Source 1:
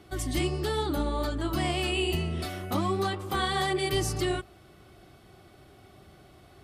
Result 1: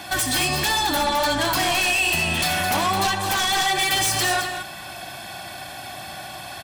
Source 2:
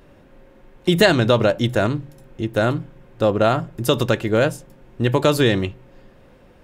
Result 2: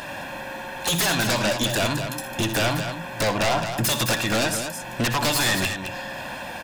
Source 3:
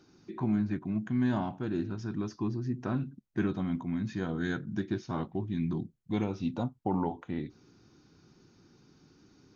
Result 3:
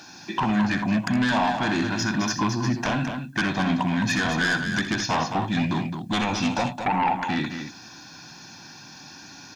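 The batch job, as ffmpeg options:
-af "highpass=f=1.1k:p=1,aecho=1:1:1.2:0.81,acompressor=threshold=-39dB:ratio=4,aeval=exprs='0.0841*sin(PI/2*6.31*val(0)/0.0841)':c=same,aecho=1:1:63|81|215:0.251|0.168|0.422,volume=3dB"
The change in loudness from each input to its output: +9.0, -4.0, +9.0 LU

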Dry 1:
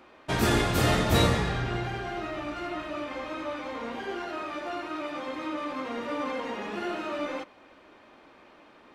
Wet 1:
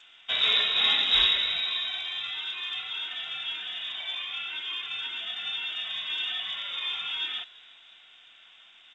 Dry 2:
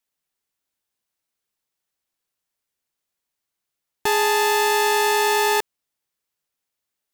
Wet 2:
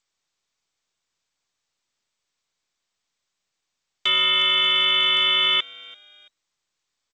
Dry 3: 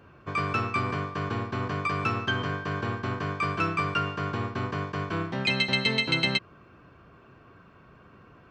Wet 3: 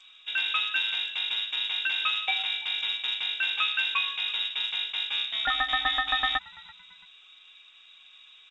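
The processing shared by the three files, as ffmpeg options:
-filter_complex "[0:a]asplit=3[a][b][c];[b]adelay=336,afreqshift=-110,volume=-23dB[d];[c]adelay=672,afreqshift=-220,volume=-31.9dB[e];[a][d][e]amix=inputs=3:normalize=0,lowpass=f=3.3k:t=q:w=0.5098,lowpass=f=3.3k:t=q:w=0.6013,lowpass=f=3.3k:t=q:w=0.9,lowpass=f=3.3k:t=q:w=2.563,afreqshift=-3900" -ar 16000 -c:a g722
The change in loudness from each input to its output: +3.0, +1.5, +1.5 LU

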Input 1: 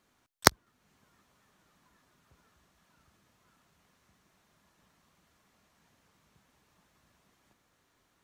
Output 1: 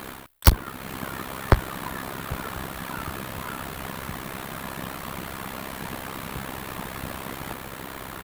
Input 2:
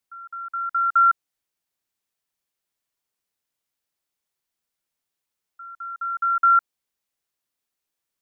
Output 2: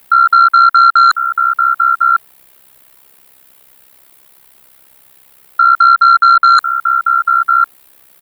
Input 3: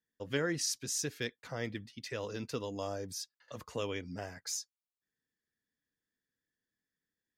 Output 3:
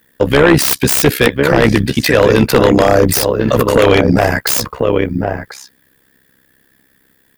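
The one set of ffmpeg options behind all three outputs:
-filter_complex "[0:a]areverse,acompressor=threshold=-33dB:ratio=10,areverse,bass=f=250:g=-2,treble=f=4k:g=5,asplit=2[a][b];[b]adelay=1050,volume=-8dB,highshelf=f=4k:g=-23.6[c];[a][c]amix=inputs=2:normalize=0,tremolo=f=66:d=0.824,aeval=exprs='0.0891*sin(PI/2*5.01*val(0)/0.0891)':c=same,equalizer=f=6.1k:t=o:w=1.1:g=-15,alimiter=level_in=22.5dB:limit=-1dB:release=50:level=0:latency=1,volume=-1dB"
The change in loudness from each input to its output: -4.5, +11.5, +26.0 LU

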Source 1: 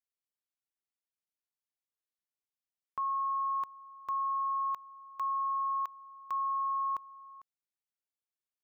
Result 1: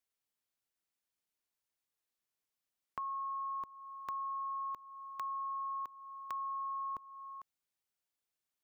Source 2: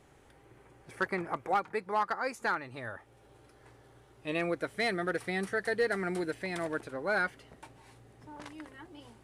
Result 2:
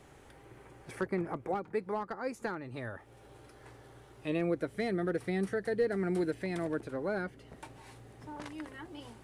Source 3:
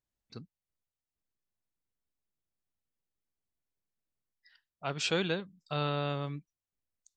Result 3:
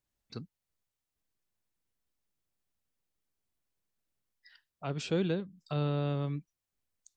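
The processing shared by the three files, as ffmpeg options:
-filter_complex "[0:a]acrossover=split=490[a][b];[b]acompressor=threshold=-48dB:ratio=3[c];[a][c]amix=inputs=2:normalize=0,volume=4dB"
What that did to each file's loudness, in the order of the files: -7.0, -2.0, 0.0 LU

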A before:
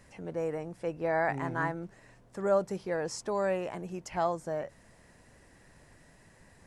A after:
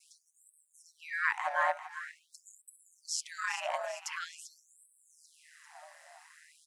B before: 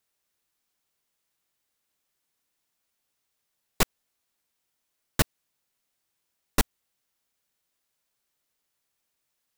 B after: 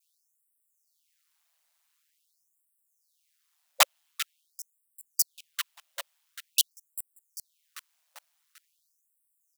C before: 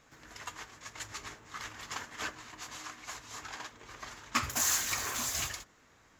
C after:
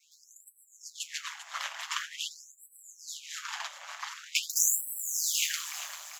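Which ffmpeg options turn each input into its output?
-filter_complex "[0:a]asplit=2[a][b];[b]aecho=0:1:394|788|1182|1576|1970:0.266|0.136|0.0692|0.0353|0.018[c];[a][c]amix=inputs=2:normalize=0,aeval=exprs='val(0)*sin(2*PI*80*n/s)':c=same,adynamicequalizer=threshold=0.00158:dfrequency=3100:dqfactor=2.5:tfrequency=3100:tqfactor=2.5:attack=5:release=100:ratio=0.375:range=3:mode=boostabove:tftype=bell,afftfilt=real='re*gte(b*sr/1024,530*pow(7800/530,0.5+0.5*sin(2*PI*0.46*pts/sr)))':imag='im*gte(b*sr/1024,530*pow(7800/530,0.5+0.5*sin(2*PI*0.46*pts/sr)))':win_size=1024:overlap=0.75,volume=8dB"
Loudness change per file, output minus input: -2.0, +0.5, +4.0 LU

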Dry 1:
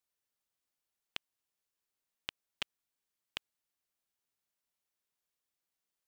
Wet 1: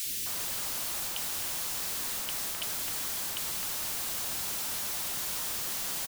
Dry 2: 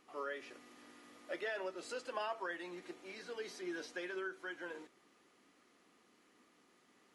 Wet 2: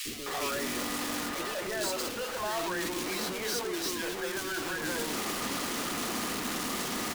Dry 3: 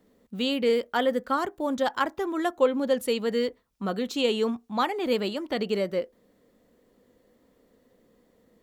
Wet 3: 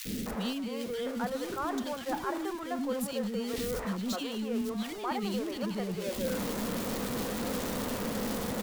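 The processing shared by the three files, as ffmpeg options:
-filter_complex "[0:a]aeval=exprs='val(0)+0.5*0.0447*sgn(val(0))':c=same,adynamicequalizer=threshold=0.00708:dfrequency=210:dqfactor=3.1:tfrequency=210:tqfactor=3.1:attack=5:release=100:ratio=0.375:range=3:mode=boostabove:tftype=bell,areverse,acompressor=threshold=-32dB:ratio=6,areverse,acrossover=split=390|2100[a][b][c];[a]adelay=50[d];[b]adelay=260[e];[d][e][c]amix=inputs=3:normalize=0,volume=1.5dB"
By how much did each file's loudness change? +15.0, +11.5, -6.5 LU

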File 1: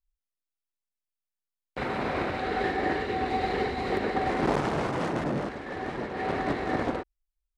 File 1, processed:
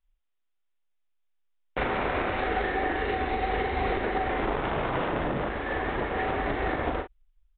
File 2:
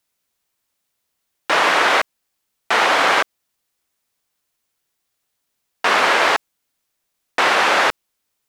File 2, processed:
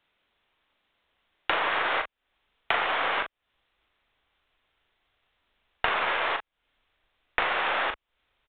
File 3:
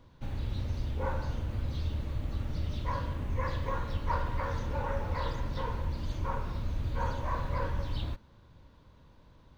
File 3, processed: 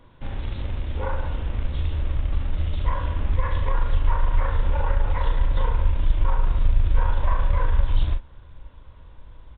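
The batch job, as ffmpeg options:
-filter_complex "[0:a]acrusher=bits=5:mode=log:mix=0:aa=0.000001,equalizer=f=120:w=0.53:g=-5,acompressor=threshold=-31dB:ratio=16,asubboost=boost=4:cutoff=86,aeval=exprs='0.224*(cos(1*acos(clip(val(0)/0.224,-1,1)))-cos(1*PI/2))+0.01*(cos(6*acos(clip(val(0)/0.224,-1,1)))-cos(6*PI/2))':c=same,asplit=2[a][b];[b]adelay=39,volume=-7dB[c];[a][c]amix=inputs=2:normalize=0,aresample=8000,aresample=44100,volume=7dB"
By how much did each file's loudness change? +0.5, -11.0, +9.0 LU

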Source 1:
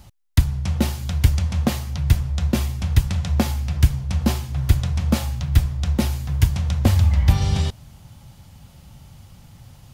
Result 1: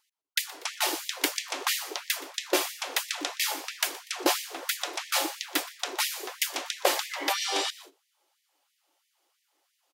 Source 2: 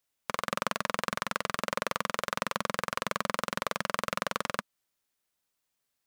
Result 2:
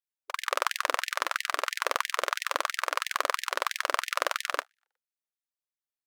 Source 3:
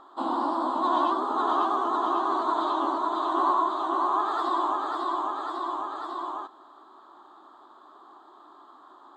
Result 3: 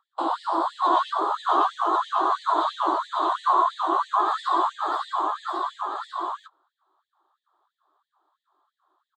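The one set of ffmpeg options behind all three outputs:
-filter_complex "[0:a]asplit=4[a][b][c][d];[b]adelay=121,afreqshift=100,volume=-20dB[e];[c]adelay=242,afreqshift=200,volume=-26.7dB[f];[d]adelay=363,afreqshift=300,volume=-33.5dB[g];[a][e][f][g]amix=inputs=4:normalize=0,agate=range=-22dB:threshold=-37dB:ratio=16:detection=peak,afftfilt=real='re*gte(b*sr/1024,260*pow(1800/260,0.5+0.5*sin(2*PI*3*pts/sr)))':imag='im*gte(b*sr/1024,260*pow(1800/260,0.5+0.5*sin(2*PI*3*pts/sr)))':win_size=1024:overlap=0.75,volume=4.5dB"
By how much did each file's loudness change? -7.5, +3.0, +2.5 LU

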